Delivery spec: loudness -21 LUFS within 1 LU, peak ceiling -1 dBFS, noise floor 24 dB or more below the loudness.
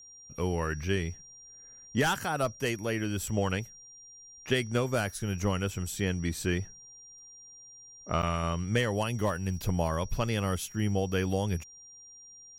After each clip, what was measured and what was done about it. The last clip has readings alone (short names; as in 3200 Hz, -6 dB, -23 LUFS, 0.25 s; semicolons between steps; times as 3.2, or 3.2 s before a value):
dropouts 1; longest dropout 8.3 ms; steady tone 5700 Hz; tone level -49 dBFS; loudness -31.0 LUFS; peak -13.5 dBFS; loudness target -21.0 LUFS
-> interpolate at 8.22, 8.3 ms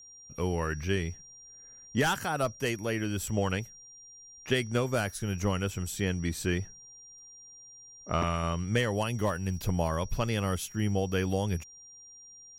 dropouts 0; steady tone 5700 Hz; tone level -49 dBFS
-> notch 5700 Hz, Q 30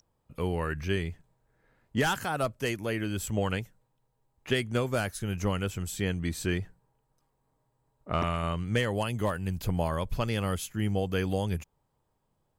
steady tone none; loudness -31.0 LUFS; peak -13.5 dBFS; loudness target -21.0 LUFS
-> gain +10 dB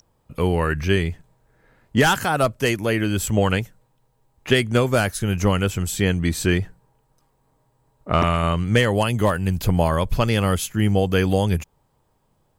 loudness -21.0 LUFS; peak -3.5 dBFS; noise floor -66 dBFS